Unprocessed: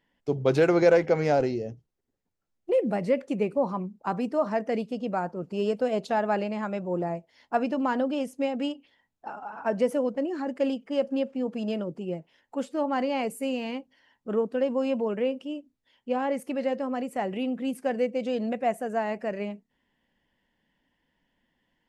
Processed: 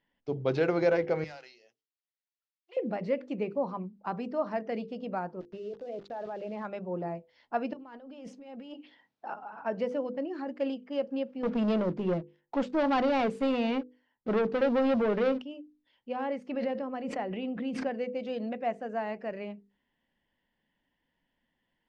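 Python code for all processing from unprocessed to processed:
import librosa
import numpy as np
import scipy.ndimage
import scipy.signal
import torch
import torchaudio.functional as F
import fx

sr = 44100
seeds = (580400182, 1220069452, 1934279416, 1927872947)

y = fx.chain(x, sr, fx.bessel_highpass(hz=2400.0, order=2),
    fx.clip_hard(threshold_db=-34.5), at=(1.24, 2.77))
y = fx.chain(y, sr, fx.envelope_sharpen(power=1.5),
    fx.level_steps(step_db=16),
    fx.sample_gate(floor_db=-46.0), at=(5.4, 6.65))
y = fx.chain(y, sr, fx.highpass(hz=170.0, slope=12),
    fx.over_compress(threshold_db=-39.0, ratio=-1.0), at=(7.73, 9.34))
y = fx.chain(y, sr, fx.peak_eq(hz=4400.0, db=-5.5, octaves=1.6),
    fx.leveller(passes=3), at=(11.43, 15.42))
y = fx.chain(y, sr, fx.high_shelf(hz=7500.0, db=-11.0),
    fx.pre_swell(db_per_s=24.0), at=(16.49, 17.95))
y = scipy.signal.sosfilt(scipy.signal.butter(4, 5100.0, 'lowpass', fs=sr, output='sos'), y)
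y = fx.hum_notches(y, sr, base_hz=50, count=10)
y = y * 10.0 ** (-5.0 / 20.0)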